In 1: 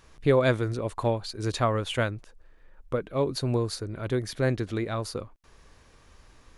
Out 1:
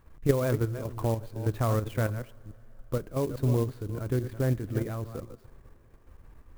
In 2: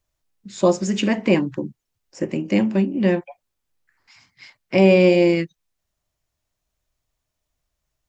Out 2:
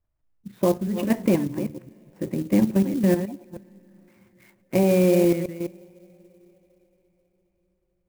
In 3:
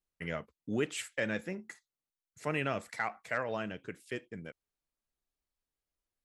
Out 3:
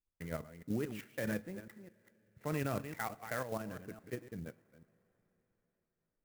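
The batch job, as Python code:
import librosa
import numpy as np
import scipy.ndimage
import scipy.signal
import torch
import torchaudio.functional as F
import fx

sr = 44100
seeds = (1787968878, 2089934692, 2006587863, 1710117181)

y = fx.reverse_delay(x, sr, ms=210, wet_db=-10.5)
y = scipy.signal.sosfilt(scipy.signal.butter(2, 2000.0, 'lowpass', fs=sr, output='sos'), y)
y = fx.level_steps(y, sr, step_db=9)
y = fx.low_shelf(y, sr, hz=250.0, db=8.0)
y = fx.rev_double_slope(y, sr, seeds[0], early_s=0.35, late_s=4.7, knee_db=-19, drr_db=17.0)
y = fx.clock_jitter(y, sr, seeds[1], jitter_ms=0.039)
y = y * librosa.db_to_amplitude(-2.0)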